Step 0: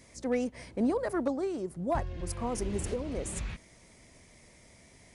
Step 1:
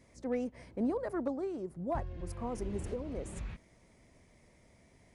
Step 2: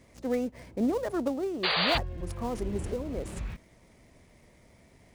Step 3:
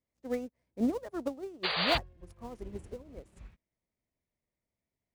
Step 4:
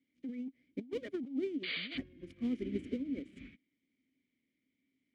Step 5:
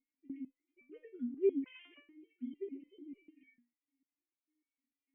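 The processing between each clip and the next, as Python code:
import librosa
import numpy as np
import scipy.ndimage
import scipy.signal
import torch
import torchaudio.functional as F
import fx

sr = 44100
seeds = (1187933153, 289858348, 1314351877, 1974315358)

y1 = fx.high_shelf(x, sr, hz=2300.0, db=-9.5)
y1 = F.gain(torch.from_numpy(y1), -4.0).numpy()
y2 = fx.dead_time(y1, sr, dead_ms=0.084)
y2 = fx.spec_paint(y2, sr, seeds[0], shape='noise', start_s=1.63, length_s=0.35, low_hz=420.0, high_hz=4800.0, level_db=-32.0)
y2 = F.gain(torch.from_numpy(y2), 5.0).numpy()
y3 = fx.upward_expand(y2, sr, threshold_db=-45.0, expansion=2.5)
y4 = fx.vowel_filter(y3, sr, vowel='i')
y4 = fx.over_compress(y4, sr, threshold_db=-52.0, ratio=-1.0)
y4 = F.gain(torch.from_numpy(y4), 12.5).numpy()
y5 = fx.sine_speech(y4, sr)
y5 = fx.resonator_held(y5, sr, hz=6.7, low_hz=240.0, high_hz=580.0)
y5 = F.gain(torch.from_numpy(y5), 10.0).numpy()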